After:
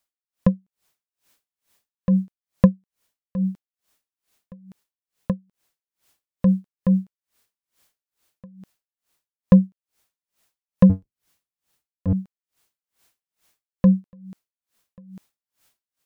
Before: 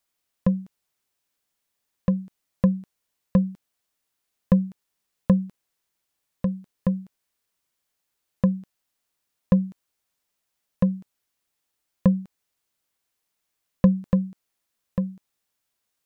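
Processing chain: 10.89–12.13 octaver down 1 oct, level +1 dB; AGC gain up to 15 dB; dB-linear tremolo 2.3 Hz, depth 35 dB; gain +1.5 dB

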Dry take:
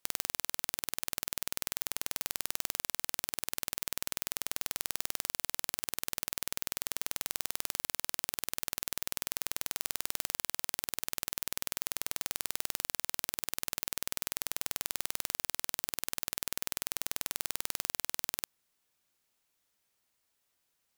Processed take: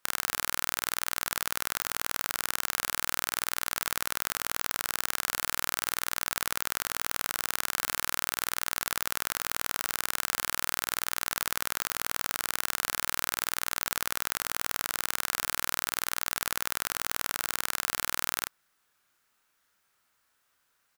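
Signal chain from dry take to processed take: bell 1400 Hz +11 dB 0.97 oct; doubler 31 ms -5 dB; gain +2.5 dB

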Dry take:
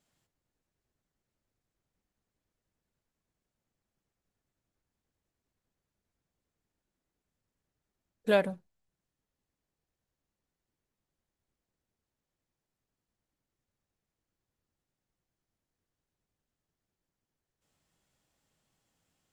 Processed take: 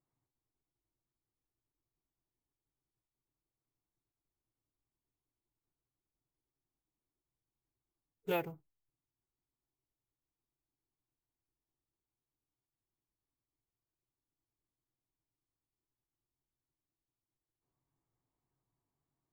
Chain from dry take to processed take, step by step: Wiener smoothing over 15 samples; ripple EQ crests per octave 0.71, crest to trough 9 dB; formant-preserving pitch shift -2.5 st; careless resampling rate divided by 3×, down none, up hold; gain -8 dB

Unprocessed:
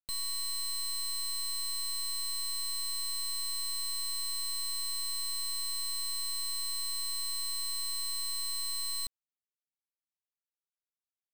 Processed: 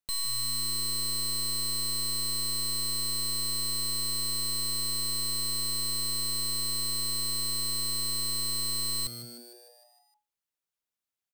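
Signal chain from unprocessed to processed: frequency-shifting echo 0.153 s, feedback 60%, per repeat +120 Hz, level -12.5 dB; gain +4 dB

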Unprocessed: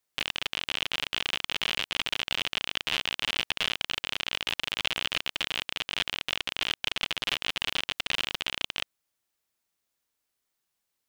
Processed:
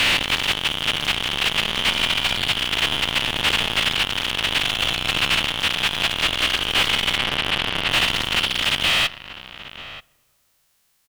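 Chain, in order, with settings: spectral dilation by 0.48 s; bell 410 Hz -6 dB 1.7 oct; in parallel at +3 dB: limiter -12 dBFS, peak gain reduction 9 dB; on the sum: soft clip -4.5 dBFS, distortion -16 dB; 7.17–7.92 air absorption 190 m; outdoor echo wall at 160 m, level -13 dB; on a send at -23.5 dB: reverb RT60 2.2 s, pre-delay 4 ms; on the sum: slew limiter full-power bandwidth 340 Hz; gain +3 dB

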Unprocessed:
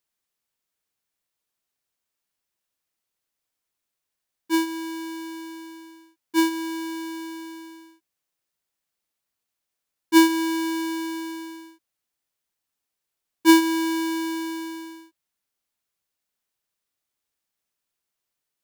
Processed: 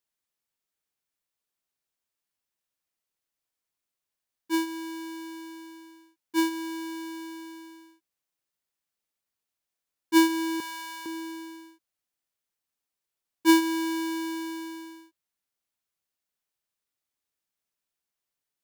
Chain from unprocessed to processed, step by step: 10.6–11.06 HPF 600 Hz 24 dB/oct; gain -4.5 dB

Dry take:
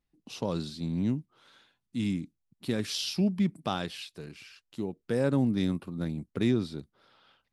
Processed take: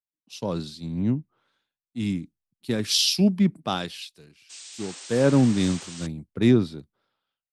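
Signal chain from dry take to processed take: painted sound noise, 4.49–6.07, 250–8900 Hz -44 dBFS; three-band expander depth 100%; gain +4 dB

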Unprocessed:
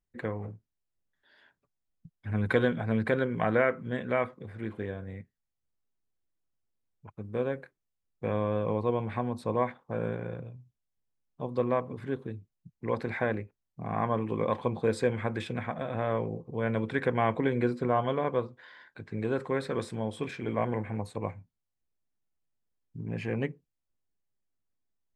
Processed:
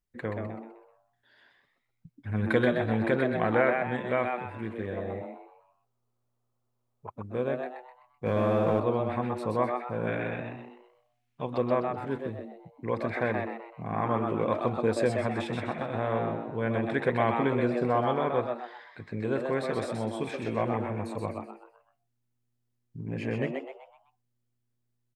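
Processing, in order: 4.98–7.14 spectral gain 350–1300 Hz +12 dB; 10.07–11.58 bell 2300 Hz +14 dB 1.7 oct; frequency-shifting echo 0.127 s, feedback 38%, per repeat +120 Hz, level -4.5 dB; 8.26–8.8 sample leveller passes 1

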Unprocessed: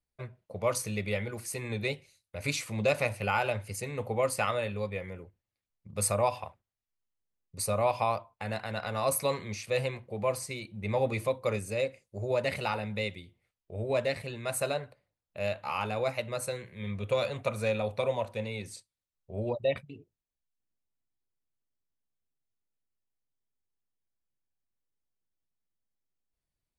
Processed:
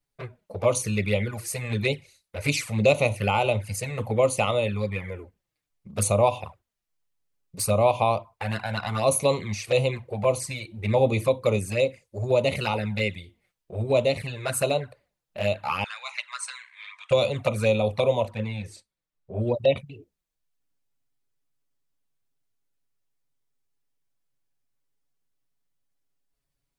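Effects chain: envelope flanger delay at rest 7.2 ms, full sweep at -27 dBFS; 15.84–17.11 Chebyshev band-pass 990–8800 Hz, order 4; 18.3–19.4 high shelf 3700 Hz -10.5 dB; gain +9 dB

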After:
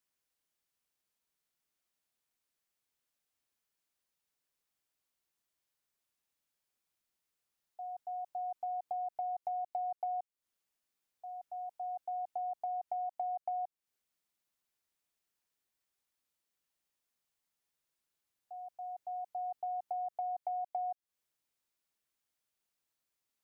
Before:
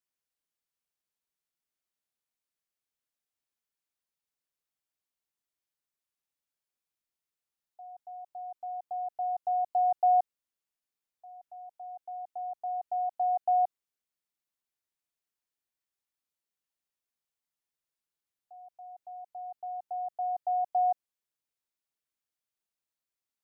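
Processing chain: compressor 12:1, threshold -39 dBFS, peak gain reduction 18 dB; gain +4 dB

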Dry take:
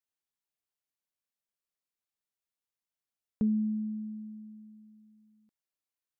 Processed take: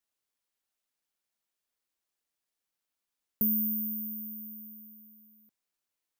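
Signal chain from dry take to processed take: careless resampling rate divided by 3×, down none, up zero stuff; in parallel at -0.5 dB: compressor, threshold -38 dBFS, peak gain reduction 19 dB; on the sum: bell 110 Hz -14.5 dB 0.44 oct; gain -5.5 dB

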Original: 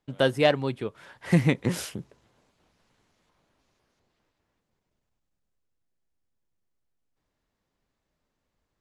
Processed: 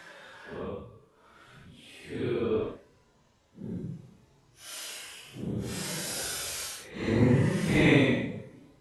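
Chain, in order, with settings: slices in reverse order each 0.124 s, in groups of 6; Paulstretch 8.3×, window 0.05 s, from 1.17

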